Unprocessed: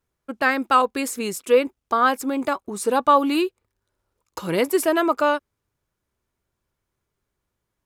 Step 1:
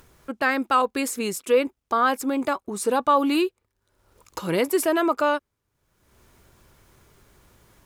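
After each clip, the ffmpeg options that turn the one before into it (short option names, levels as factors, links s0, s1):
-filter_complex "[0:a]asplit=2[s0][s1];[s1]alimiter=limit=0.178:level=0:latency=1:release=29,volume=0.841[s2];[s0][s2]amix=inputs=2:normalize=0,acompressor=mode=upward:threshold=0.0282:ratio=2.5,volume=0.531"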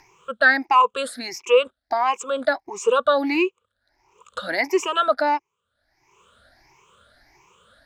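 -filter_complex "[0:a]afftfilt=real='re*pow(10,23/40*sin(2*PI*(0.74*log(max(b,1)*sr/1024/100)/log(2)-(1.5)*(pts-256)/sr)))':imag='im*pow(10,23/40*sin(2*PI*(0.74*log(max(b,1)*sr/1024/100)/log(2)-(1.5)*(pts-256)/sr)))':win_size=1024:overlap=0.75,acrossover=split=520 6500:gain=0.224 1 0.0794[s0][s1][s2];[s0][s1][s2]amix=inputs=3:normalize=0"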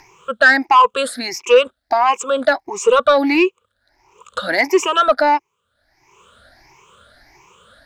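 -af "asoftclip=type=tanh:threshold=0.335,volume=2.24"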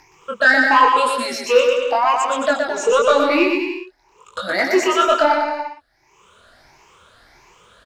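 -filter_complex "[0:a]flanger=delay=20:depth=6.8:speed=0.9,asplit=2[s0][s1];[s1]aecho=0:1:120|216|292.8|354.2|403.4:0.631|0.398|0.251|0.158|0.1[s2];[s0][s2]amix=inputs=2:normalize=0"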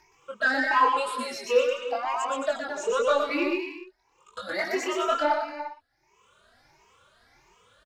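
-filter_complex "[0:a]asplit=2[s0][s1];[s1]adelay=2.8,afreqshift=2.8[s2];[s0][s2]amix=inputs=2:normalize=1,volume=0.447"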